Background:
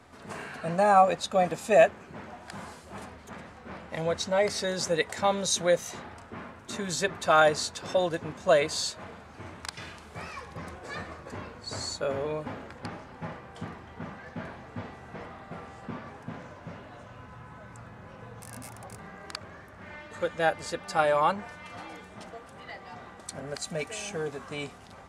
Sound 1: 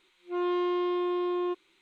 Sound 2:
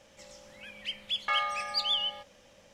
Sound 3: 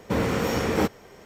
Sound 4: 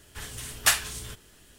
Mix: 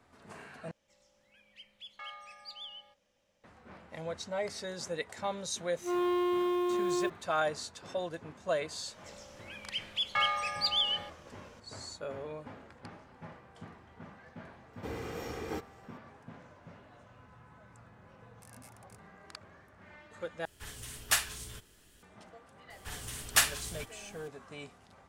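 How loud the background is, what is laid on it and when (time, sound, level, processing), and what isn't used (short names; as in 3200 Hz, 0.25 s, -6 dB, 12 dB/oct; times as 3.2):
background -10 dB
0.71 replace with 2 -17 dB
5.55 add 1 -1.5 dB + block floating point 5-bit
8.87 add 2 -0.5 dB
14.73 add 3 -16 dB + comb 2.5 ms, depth 44%
20.45 replace with 4 -6.5 dB
22.7 add 4 -3.5 dB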